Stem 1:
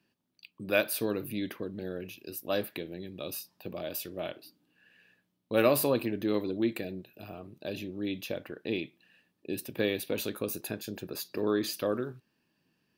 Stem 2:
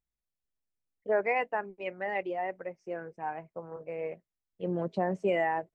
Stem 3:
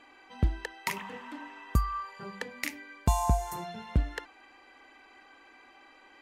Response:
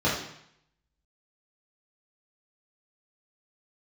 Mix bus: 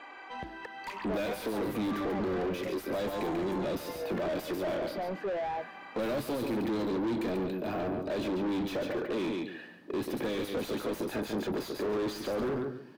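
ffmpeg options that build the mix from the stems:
-filter_complex "[0:a]equalizer=f=270:t=o:w=1.6:g=6.5,bandreject=f=2700:w=6.8,acrossover=split=170|3000[s0][s1][s2];[s1]acompressor=threshold=0.0224:ratio=6[s3];[s0][s3][s2]amix=inputs=3:normalize=0,adelay=450,volume=0.668,asplit=2[s4][s5];[s5]volume=0.316[s6];[1:a]equalizer=f=1800:w=1.5:g=-11.5,volume=0.112[s7];[2:a]lowshelf=f=190:g=-11.5,acompressor=threshold=0.00891:ratio=4,volume=0.224[s8];[s6]aecho=0:1:141|282|423:1|0.18|0.0324[s9];[s4][s7][s8][s9]amix=inputs=4:normalize=0,asplit=2[s10][s11];[s11]highpass=f=720:p=1,volume=56.2,asoftclip=type=tanh:threshold=0.0668[s12];[s10][s12]amix=inputs=2:normalize=0,lowpass=f=1000:p=1,volume=0.501"

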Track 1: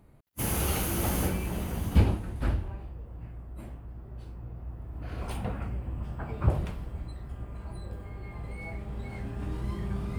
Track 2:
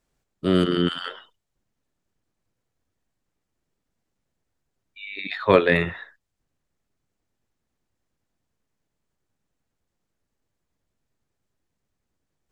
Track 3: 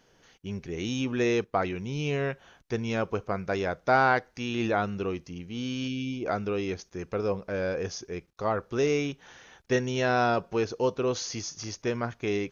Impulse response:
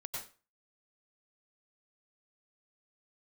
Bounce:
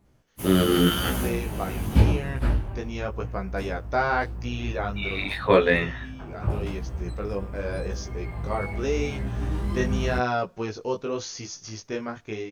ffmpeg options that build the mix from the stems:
-filter_complex "[0:a]volume=0.841[s0];[1:a]volume=1.26[s1];[2:a]adelay=50,volume=0.376[s2];[s0][s1][s2]amix=inputs=3:normalize=0,dynaudnorm=f=490:g=3:m=3.16,flanger=delay=15.5:depth=5.3:speed=0.87"

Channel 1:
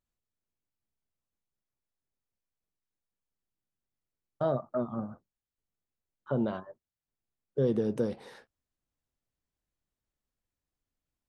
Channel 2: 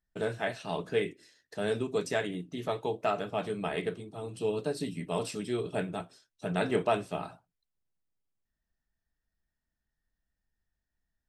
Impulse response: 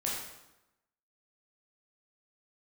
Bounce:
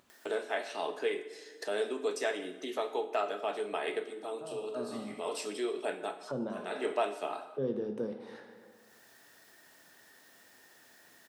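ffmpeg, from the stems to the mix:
-filter_complex "[0:a]highshelf=f=5400:g=-11,volume=0.376,afade=t=in:st=4.5:d=0.34:silence=0.223872,asplit=3[s0][s1][s2];[s1]volume=0.422[s3];[1:a]highpass=f=300:w=0.5412,highpass=f=300:w=1.3066,acompressor=threshold=0.01:ratio=1.5,adelay=100,volume=1.12,asplit=2[s4][s5];[s5]volume=0.282[s6];[s2]apad=whole_len=502082[s7];[s4][s7]sidechaincompress=threshold=0.00158:ratio=8:attack=16:release=287[s8];[2:a]atrim=start_sample=2205[s9];[s3][s6]amix=inputs=2:normalize=0[s10];[s10][s9]afir=irnorm=-1:irlink=0[s11];[s0][s8][s11]amix=inputs=3:normalize=0,highpass=200,acompressor=mode=upward:threshold=0.0158:ratio=2.5"

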